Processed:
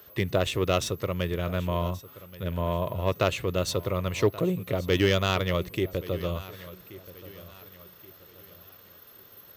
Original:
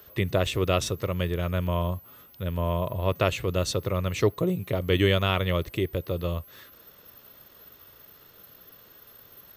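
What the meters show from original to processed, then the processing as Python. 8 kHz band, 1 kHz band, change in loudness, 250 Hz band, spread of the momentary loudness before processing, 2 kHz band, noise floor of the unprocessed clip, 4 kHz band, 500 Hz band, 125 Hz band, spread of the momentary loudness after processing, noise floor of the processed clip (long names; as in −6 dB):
−0.5 dB, 0.0 dB, −1.0 dB, −0.5 dB, 8 LU, −0.5 dB, −54 dBFS, −0.5 dB, 0.0 dB, −2.0 dB, 20 LU, −52 dBFS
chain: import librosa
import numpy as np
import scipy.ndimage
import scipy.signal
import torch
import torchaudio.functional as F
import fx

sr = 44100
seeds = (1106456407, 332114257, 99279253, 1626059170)

y = fx.self_delay(x, sr, depth_ms=0.058)
y = fx.low_shelf(y, sr, hz=66.0, db=-8.0)
y = fx.echo_feedback(y, sr, ms=1128, feedback_pct=38, wet_db=-18.0)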